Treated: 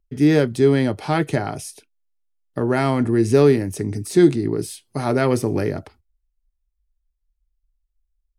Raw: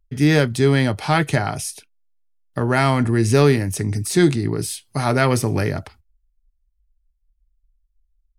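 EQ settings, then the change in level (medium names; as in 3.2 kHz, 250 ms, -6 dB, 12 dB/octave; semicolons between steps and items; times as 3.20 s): peaking EQ 360 Hz +9.5 dB 1.8 oct; -6.5 dB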